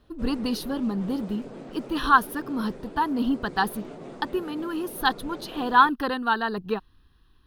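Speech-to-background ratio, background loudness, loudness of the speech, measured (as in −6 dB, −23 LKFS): 16.0 dB, −42.0 LKFS, −26.0 LKFS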